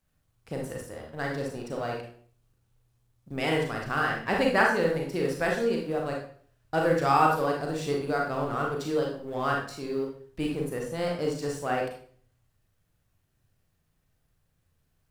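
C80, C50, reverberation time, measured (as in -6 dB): 8.5 dB, 3.5 dB, 0.50 s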